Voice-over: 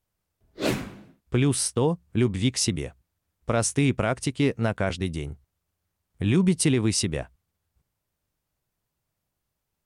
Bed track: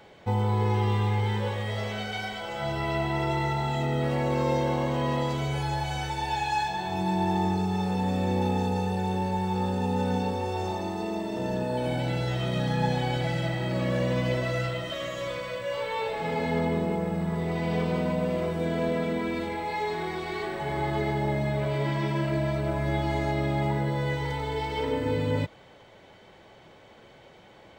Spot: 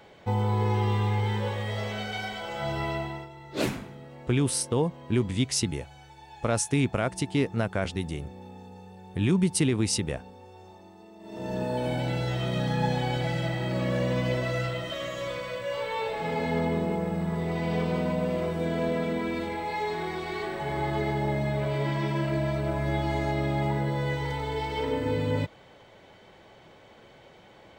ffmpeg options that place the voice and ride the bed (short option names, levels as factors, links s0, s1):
-filter_complex "[0:a]adelay=2950,volume=0.75[s0];[1:a]volume=7.94,afade=t=out:st=2.82:d=0.47:silence=0.11885,afade=t=in:st=11.19:d=0.44:silence=0.11885[s1];[s0][s1]amix=inputs=2:normalize=0"